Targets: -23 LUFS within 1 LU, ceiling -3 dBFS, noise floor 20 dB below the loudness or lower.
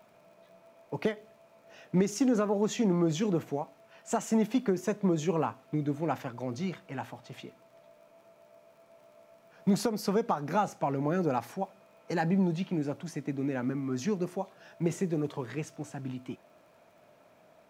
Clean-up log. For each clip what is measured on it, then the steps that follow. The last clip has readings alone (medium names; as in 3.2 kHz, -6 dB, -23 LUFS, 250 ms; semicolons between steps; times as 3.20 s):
tick rate 23 per s; loudness -31.5 LUFS; peak level -17.0 dBFS; loudness target -23.0 LUFS
-> de-click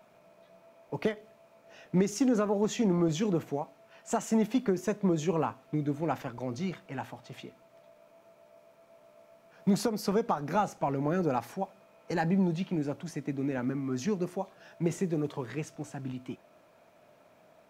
tick rate 0 per s; loudness -31.5 LUFS; peak level -17.0 dBFS; loudness target -23.0 LUFS
-> trim +8.5 dB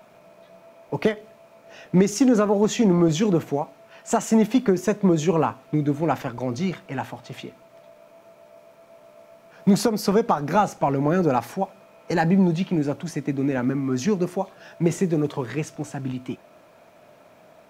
loudness -23.0 LUFS; peak level -8.5 dBFS; noise floor -53 dBFS